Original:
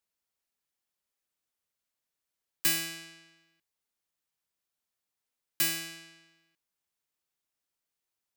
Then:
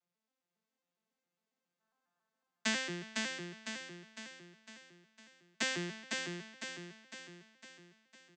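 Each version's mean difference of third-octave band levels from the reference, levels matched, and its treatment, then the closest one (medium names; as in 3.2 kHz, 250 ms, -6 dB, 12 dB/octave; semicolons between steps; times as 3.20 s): 15.5 dB: vocoder on a broken chord major triad, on F3, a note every 137 ms; time-frequency box 1.80–2.29 s, 660–1800 Hz +12 dB; on a send: feedback delay 505 ms, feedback 51%, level -3.5 dB; on the sum: trim -1 dB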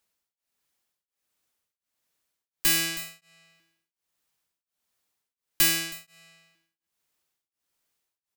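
3.5 dB: single-diode clipper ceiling -23 dBFS; on a send: delay 320 ms -16 dB; on the sum: tremolo of two beating tones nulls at 1.4 Hz; trim +9 dB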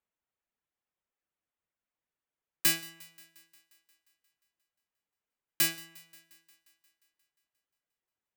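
6.0 dB: local Wiener filter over 9 samples; reverb removal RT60 0.59 s; on a send: thinning echo 177 ms, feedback 67%, high-pass 190 Hz, level -23 dB; on the sum: trim +1.5 dB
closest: second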